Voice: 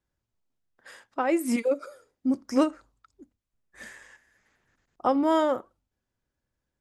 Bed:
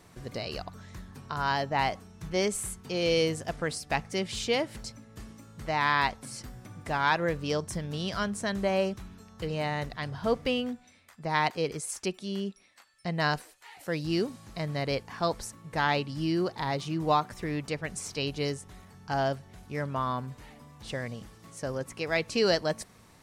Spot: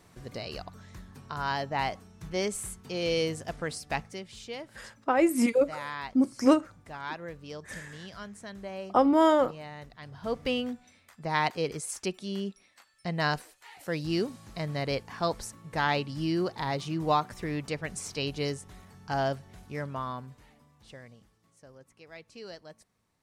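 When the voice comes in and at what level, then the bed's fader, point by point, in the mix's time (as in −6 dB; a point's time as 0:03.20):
3.90 s, +1.5 dB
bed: 0:04.01 −2.5 dB
0:04.24 −12 dB
0:09.97 −12 dB
0:10.51 −0.5 dB
0:19.58 −0.5 dB
0:21.66 −19.5 dB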